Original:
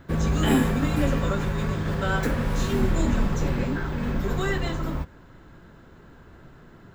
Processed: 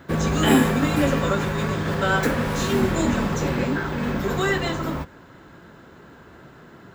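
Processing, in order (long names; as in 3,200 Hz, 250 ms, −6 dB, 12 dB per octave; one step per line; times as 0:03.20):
high-pass filter 47 Hz
low-shelf EQ 120 Hz −11.5 dB
level +6 dB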